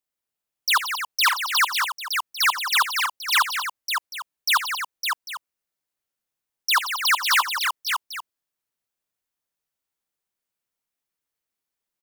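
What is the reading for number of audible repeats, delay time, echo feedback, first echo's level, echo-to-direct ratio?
5, 76 ms, no steady repeat, -14.5 dB, -2.5 dB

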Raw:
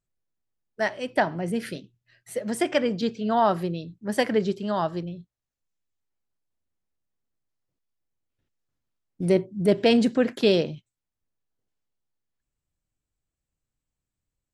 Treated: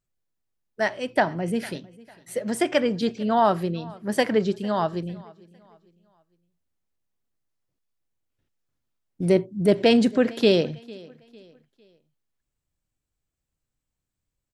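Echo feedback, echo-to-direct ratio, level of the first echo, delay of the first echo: 38%, -22.5 dB, -23.0 dB, 0.452 s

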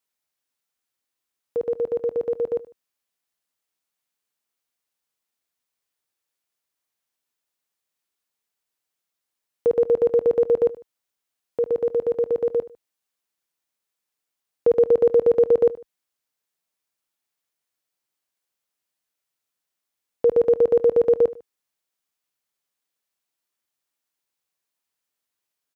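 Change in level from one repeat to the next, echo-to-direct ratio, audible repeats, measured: -8.0 dB, -17.5 dB, 2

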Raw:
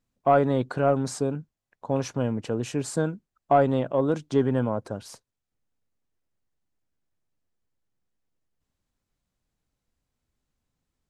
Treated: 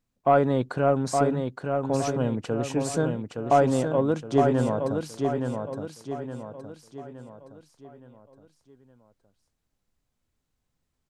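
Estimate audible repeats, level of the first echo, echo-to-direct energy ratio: 5, -5.0 dB, -4.0 dB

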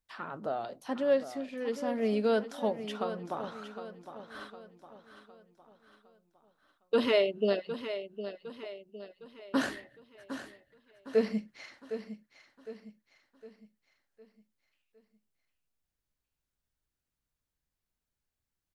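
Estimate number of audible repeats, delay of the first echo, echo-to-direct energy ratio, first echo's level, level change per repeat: 4, 0.759 s, -10.0 dB, -11.0 dB, -7.0 dB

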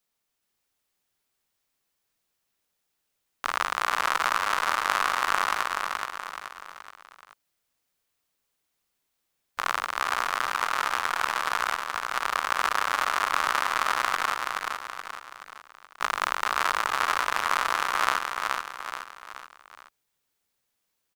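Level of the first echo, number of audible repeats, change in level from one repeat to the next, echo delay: -3.5 dB, 4, -6.5 dB, 0.426 s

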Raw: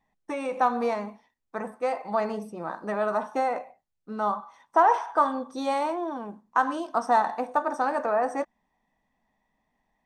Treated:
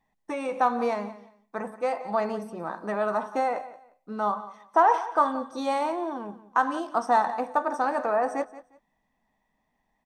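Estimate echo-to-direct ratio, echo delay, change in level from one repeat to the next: -16.5 dB, 0.177 s, -13.0 dB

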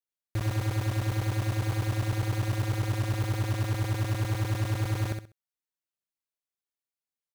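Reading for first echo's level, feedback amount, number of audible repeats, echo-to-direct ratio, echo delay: -6.0 dB, 24%, 3, -6.0 dB, 65 ms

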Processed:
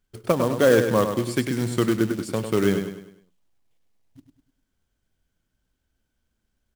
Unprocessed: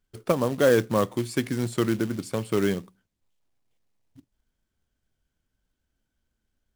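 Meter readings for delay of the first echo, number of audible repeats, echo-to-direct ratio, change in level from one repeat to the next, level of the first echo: 0.101 s, 4, -6.5 dB, -7.5 dB, -7.5 dB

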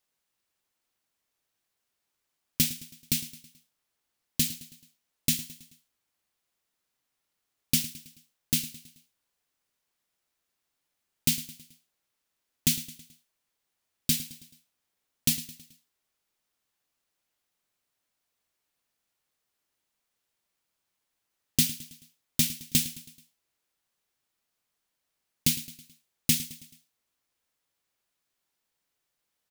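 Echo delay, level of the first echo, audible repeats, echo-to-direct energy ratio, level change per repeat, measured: 0.108 s, -16.0 dB, 4, -15.0 dB, -6.0 dB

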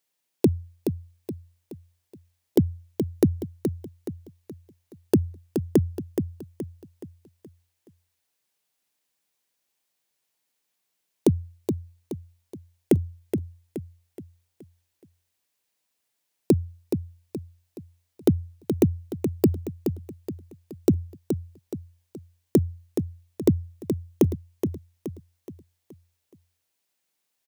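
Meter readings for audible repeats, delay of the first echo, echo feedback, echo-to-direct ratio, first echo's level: 4, 0.423 s, 42%, -6.0 dB, -7.0 dB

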